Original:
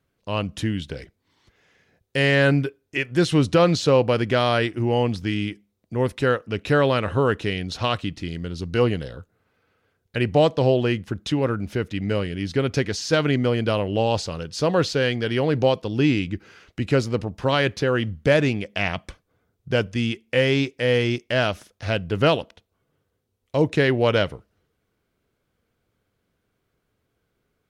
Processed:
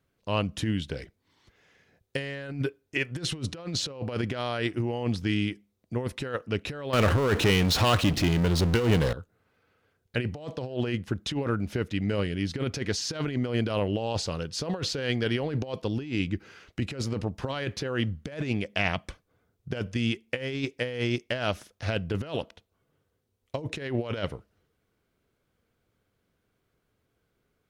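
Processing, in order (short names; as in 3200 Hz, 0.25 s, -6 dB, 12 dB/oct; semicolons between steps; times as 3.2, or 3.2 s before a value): negative-ratio compressor -23 dBFS, ratio -0.5; 6.93–9.13 power-law curve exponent 0.5; gain -5 dB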